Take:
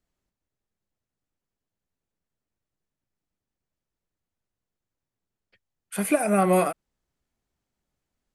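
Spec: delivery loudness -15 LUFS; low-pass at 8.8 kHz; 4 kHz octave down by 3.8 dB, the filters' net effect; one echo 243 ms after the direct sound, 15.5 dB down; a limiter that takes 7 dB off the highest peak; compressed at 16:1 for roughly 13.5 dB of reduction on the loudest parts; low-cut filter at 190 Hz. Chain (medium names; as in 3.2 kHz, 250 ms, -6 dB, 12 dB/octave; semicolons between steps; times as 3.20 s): high-pass 190 Hz; low-pass 8.8 kHz; peaking EQ 4 kHz -5 dB; compression 16:1, threshold -29 dBFS; peak limiter -27.5 dBFS; delay 243 ms -15.5 dB; trim +23.5 dB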